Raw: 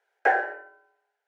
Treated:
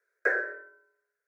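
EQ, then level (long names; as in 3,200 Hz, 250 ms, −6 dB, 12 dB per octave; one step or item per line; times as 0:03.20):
parametric band 780 Hz −12 dB 0.53 octaves
phaser with its sweep stopped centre 820 Hz, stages 6
0.0 dB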